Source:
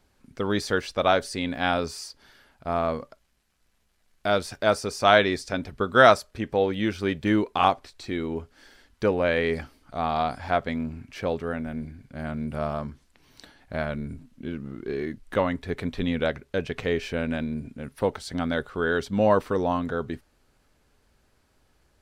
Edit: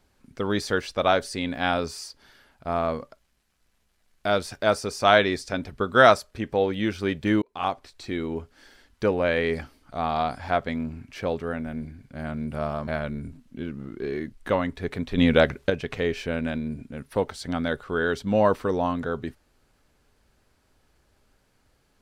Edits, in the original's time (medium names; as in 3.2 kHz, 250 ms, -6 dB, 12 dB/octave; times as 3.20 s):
7.42–8.16 s: fade in equal-power
12.87–13.73 s: delete
16.04–16.56 s: gain +7.5 dB